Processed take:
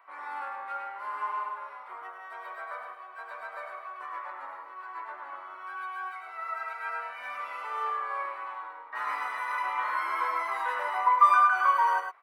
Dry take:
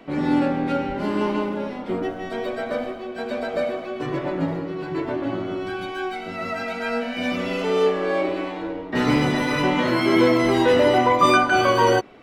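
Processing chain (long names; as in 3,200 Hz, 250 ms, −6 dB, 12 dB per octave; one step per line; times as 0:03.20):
four-pole ladder high-pass 970 Hz, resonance 65%
flat-topped bell 4,500 Hz −11 dB
single-tap delay 104 ms −5.5 dB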